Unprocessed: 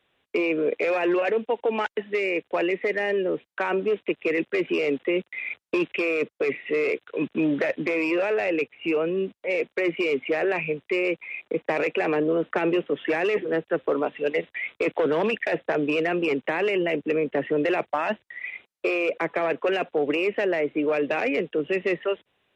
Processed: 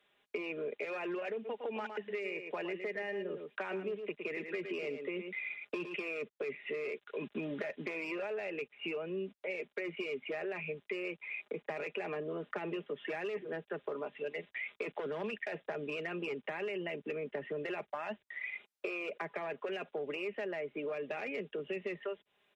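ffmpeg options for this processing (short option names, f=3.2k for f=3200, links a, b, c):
-filter_complex "[0:a]asplit=3[a][b][c];[a]afade=t=out:st=1.44:d=0.02[d];[b]aecho=1:1:110:0.355,afade=t=in:st=1.44:d=0.02,afade=t=out:st=5.94:d=0.02[e];[c]afade=t=in:st=5.94:d=0.02[f];[d][e][f]amix=inputs=3:normalize=0,lowshelf=f=210:g=-9.5,aecho=1:1:4.9:0.47,acrossover=split=150[g][h];[h]acompressor=threshold=-34dB:ratio=5[i];[g][i]amix=inputs=2:normalize=0,volume=-3.5dB"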